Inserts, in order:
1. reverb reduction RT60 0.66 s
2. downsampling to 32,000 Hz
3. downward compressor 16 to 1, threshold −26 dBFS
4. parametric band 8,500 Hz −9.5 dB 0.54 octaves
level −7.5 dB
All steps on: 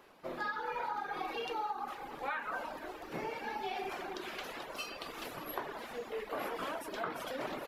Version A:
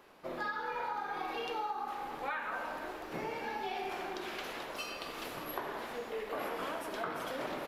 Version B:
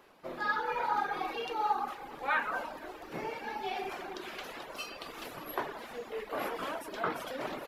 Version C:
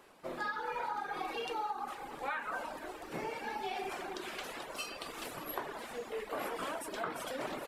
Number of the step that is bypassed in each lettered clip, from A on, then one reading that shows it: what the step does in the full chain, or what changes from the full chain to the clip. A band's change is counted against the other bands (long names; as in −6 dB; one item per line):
1, change in momentary loudness spread −2 LU
3, average gain reduction 1.5 dB
4, 8 kHz band +4.5 dB